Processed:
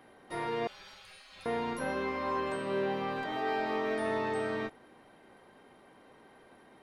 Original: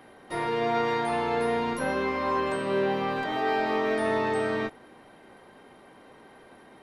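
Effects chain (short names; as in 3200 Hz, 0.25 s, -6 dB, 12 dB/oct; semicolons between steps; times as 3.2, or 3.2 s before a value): 0.67–1.46 spectral gate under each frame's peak -25 dB weak; gain -6 dB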